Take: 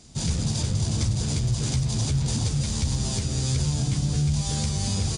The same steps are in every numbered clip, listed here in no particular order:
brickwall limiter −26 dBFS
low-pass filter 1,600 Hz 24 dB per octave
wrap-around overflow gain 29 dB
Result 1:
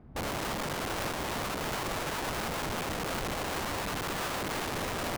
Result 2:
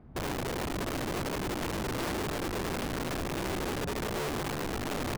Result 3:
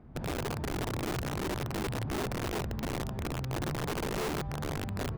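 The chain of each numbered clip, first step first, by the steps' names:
low-pass filter, then wrap-around overflow, then brickwall limiter
low-pass filter, then brickwall limiter, then wrap-around overflow
brickwall limiter, then low-pass filter, then wrap-around overflow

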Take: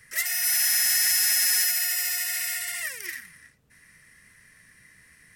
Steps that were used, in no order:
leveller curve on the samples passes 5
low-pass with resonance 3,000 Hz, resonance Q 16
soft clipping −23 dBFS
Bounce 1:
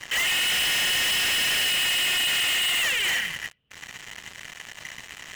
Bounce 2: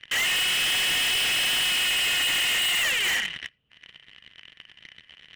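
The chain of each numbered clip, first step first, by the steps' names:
low-pass with resonance, then leveller curve on the samples, then soft clipping
leveller curve on the samples, then low-pass with resonance, then soft clipping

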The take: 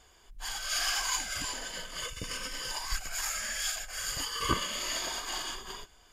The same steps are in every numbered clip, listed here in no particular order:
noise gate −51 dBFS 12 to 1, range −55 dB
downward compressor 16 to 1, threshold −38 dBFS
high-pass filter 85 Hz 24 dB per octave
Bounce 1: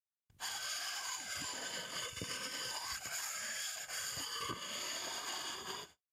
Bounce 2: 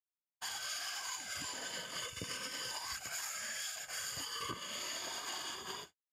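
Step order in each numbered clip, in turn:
noise gate, then high-pass filter, then downward compressor
high-pass filter, then downward compressor, then noise gate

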